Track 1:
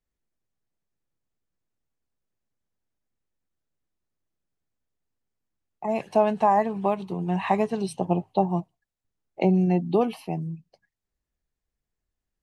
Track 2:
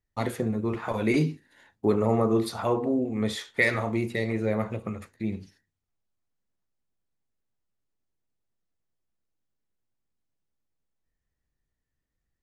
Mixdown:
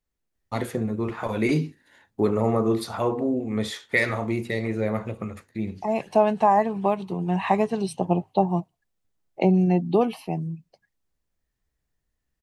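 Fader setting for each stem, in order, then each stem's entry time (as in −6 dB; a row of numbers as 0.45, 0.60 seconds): +1.5, +1.0 decibels; 0.00, 0.35 seconds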